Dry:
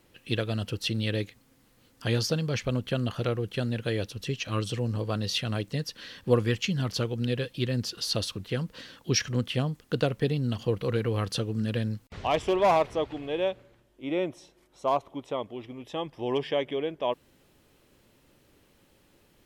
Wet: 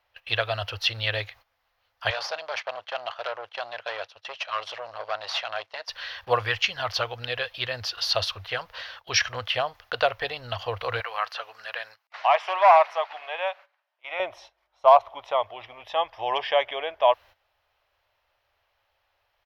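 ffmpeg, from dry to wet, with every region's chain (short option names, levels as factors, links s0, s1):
-filter_complex "[0:a]asettb=1/sr,asplit=3[s0][s1][s2];[s0]atrim=end=2.104[s3];[s1]atrim=start=2.1:end=5.89,asetpts=PTS-STARTPTS,afade=t=in:d=0.004:c=qsin,afade=t=out:st=3.786:d=0.004:c=qsin,agate=range=0.398:threshold=0.01:ratio=16:release=100:detection=peak,aeval=exprs='(tanh(28.2*val(0)+0.8)-tanh(0.8))/28.2':c=same,highpass=370,lowpass=7700[s4];[s2]atrim=start=5.886[s5];[s3][s4]acrossfade=d=0.004:c1=hsin:c2=qsin[s6];[s6][s5]acrossfade=d=0.004:c1=qsin:c2=hsin,asettb=1/sr,asplit=3[s7][s8][s9];[s7]atrim=end=11.004[s10];[s8]atrim=start=11:end=14.2,asetpts=PTS-STARTPTS,afade=t=in:d=0.004:c=qsin,afade=t=out:st=3.196:d=0.004:c=qsin,highpass=830,equalizer=f=3400:w=5.8:g=-4.5,acrossover=split=2800[s11][s12];[s12]acompressor=threshold=0.00501:ratio=4:attack=1:release=60[s13];[s11][s13]amix=inputs=2:normalize=0[s14];[s9]atrim=start=14.196[s15];[s10][s14]acrossfade=d=0.004:c1=hsin:c2=qsin[s16];[s16][s15]acrossfade=d=0.004:c1=qsin:c2=hsin,agate=range=0.2:threshold=0.00282:ratio=16:detection=peak,firequalizer=gain_entry='entry(100,0);entry(140,-24);entry(280,-20);entry(650,12);entry(5500,3);entry(7900,-14);entry(13000,-1)':delay=0.05:min_phase=1"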